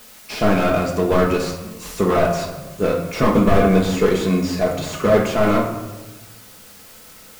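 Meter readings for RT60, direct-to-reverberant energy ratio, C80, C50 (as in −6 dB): 1.2 s, 0.5 dB, 8.5 dB, 6.5 dB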